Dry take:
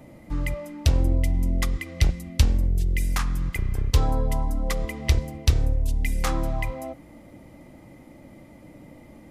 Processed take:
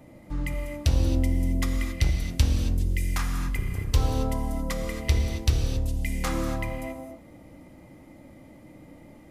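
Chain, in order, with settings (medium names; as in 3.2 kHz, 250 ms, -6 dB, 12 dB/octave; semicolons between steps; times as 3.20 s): gated-style reverb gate 300 ms flat, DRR 3 dB; trim -3.5 dB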